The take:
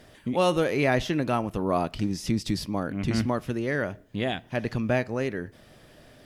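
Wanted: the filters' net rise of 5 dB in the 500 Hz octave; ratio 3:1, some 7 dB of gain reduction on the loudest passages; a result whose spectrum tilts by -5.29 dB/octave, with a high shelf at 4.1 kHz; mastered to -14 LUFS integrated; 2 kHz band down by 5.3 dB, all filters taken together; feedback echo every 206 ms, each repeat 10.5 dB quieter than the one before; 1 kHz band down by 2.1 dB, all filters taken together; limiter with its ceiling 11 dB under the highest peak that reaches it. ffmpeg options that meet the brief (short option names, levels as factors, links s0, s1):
-af "equalizer=f=500:t=o:g=8,equalizer=f=1000:t=o:g=-6.5,equalizer=f=2000:t=o:g=-7,highshelf=f=4100:g=8,acompressor=threshold=0.0631:ratio=3,alimiter=level_in=1.19:limit=0.0631:level=0:latency=1,volume=0.841,aecho=1:1:206|412|618:0.299|0.0896|0.0269,volume=10.6"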